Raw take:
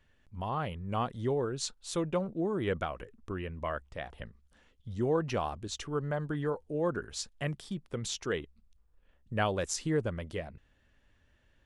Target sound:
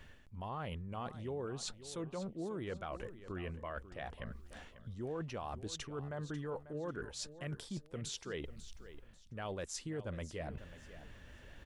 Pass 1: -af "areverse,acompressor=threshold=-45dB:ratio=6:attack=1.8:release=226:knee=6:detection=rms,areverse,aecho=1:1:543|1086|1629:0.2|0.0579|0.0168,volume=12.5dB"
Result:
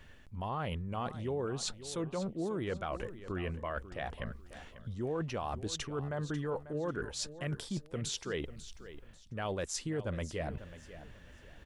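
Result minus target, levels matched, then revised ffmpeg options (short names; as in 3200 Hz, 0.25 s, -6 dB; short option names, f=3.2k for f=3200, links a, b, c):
compressor: peak gain reduction -5.5 dB
-af "areverse,acompressor=threshold=-51.5dB:ratio=6:attack=1.8:release=226:knee=6:detection=rms,areverse,aecho=1:1:543|1086|1629:0.2|0.0579|0.0168,volume=12.5dB"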